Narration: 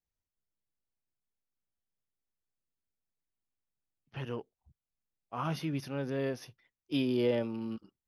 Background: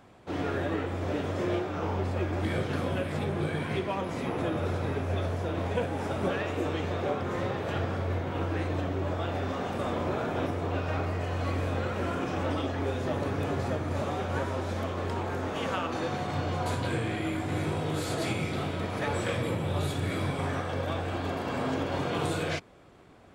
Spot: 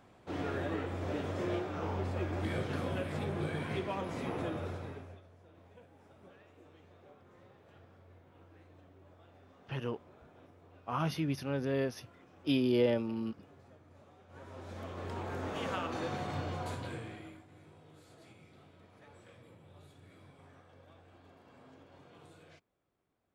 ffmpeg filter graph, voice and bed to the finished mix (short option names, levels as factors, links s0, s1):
-filter_complex "[0:a]adelay=5550,volume=1.12[s0];[1:a]volume=7.5,afade=t=out:st=4.34:d=0.87:silence=0.0707946,afade=t=in:st=14.27:d=1.23:silence=0.0707946,afade=t=out:st=16.26:d=1.2:silence=0.0794328[s1];[s0][s1]amix=inputs=2:normalize=0"